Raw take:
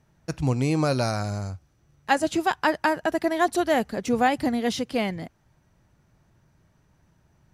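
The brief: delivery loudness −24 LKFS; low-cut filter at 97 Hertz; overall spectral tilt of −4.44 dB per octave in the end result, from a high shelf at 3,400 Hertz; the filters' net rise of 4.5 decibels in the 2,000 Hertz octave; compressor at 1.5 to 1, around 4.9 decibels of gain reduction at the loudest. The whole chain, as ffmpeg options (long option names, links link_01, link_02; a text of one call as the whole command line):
ffmpeg -i in.wav -af "highpass=97,equalizer=frequency=2000:width_type=o:gain=4,highshelf=frequency=3400:gain=6,acompressor=threshold=-28dB:ratio=1.5,volume=3.5dB" out.wav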